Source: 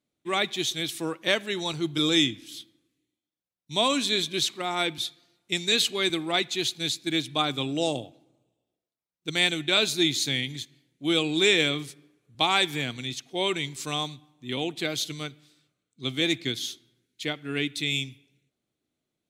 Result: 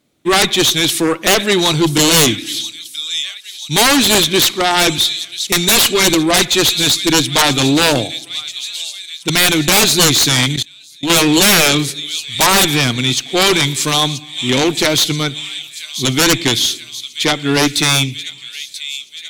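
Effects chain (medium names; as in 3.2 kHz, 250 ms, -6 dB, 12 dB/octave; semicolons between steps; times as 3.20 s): on a send: feedback echo behind a high-pass 983 ms, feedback 62%, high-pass 3.5 kHz, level -12 dB; on the sum: Chebyshev shaper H 6 -27 dB, 7 -8 dB, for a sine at -8 dBFS; sine folder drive 5 dB, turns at -8 dBFS; 10.56–11.10 s: level held to a coarse grid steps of 23 dB; trim +5.5 dB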